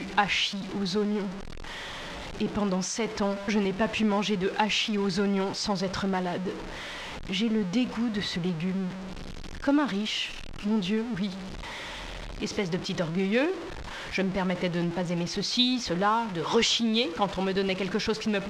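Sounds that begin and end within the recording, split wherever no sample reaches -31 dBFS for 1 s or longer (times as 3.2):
2.4–11.29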